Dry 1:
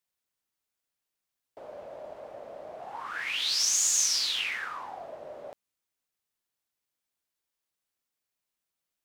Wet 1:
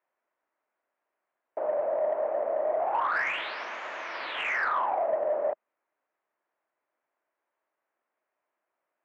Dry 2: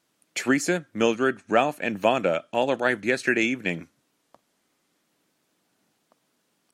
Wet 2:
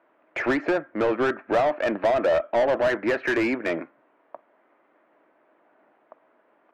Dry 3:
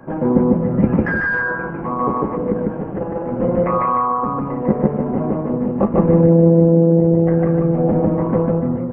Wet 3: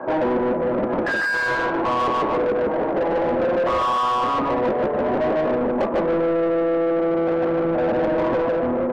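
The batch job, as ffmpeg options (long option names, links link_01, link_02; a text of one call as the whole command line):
ffmpeg -i in.wav -filter_complex "[0:a]acompressor=threshold=-19dB:ratio=4,highpass=170,equalizer=frequency=180:width_type=q:width=4:gain=-7,equalizer=frequency=340:width_type=q:width=4:gain=4,equalizer=frequency=620:width_type=q:width=4:gain=8,equalizer=frequency=970:width_type=q:width=4:gain=3,lowpass=frequency=2100:width=0.5412,lowpass=frequency=2100:width=1.3066,asplit=2[link_01][link_02];[link_02]highpass=frequency=720:poles=1,volume=25dB,asoftclip=type=tanh:threshold=-8dB[link_03];[link_01][link_03]amix=inputs=2:normalize=0,lowpass=frequency=1500:poles=1,volume=-6dB,volume=-5dB" out.wav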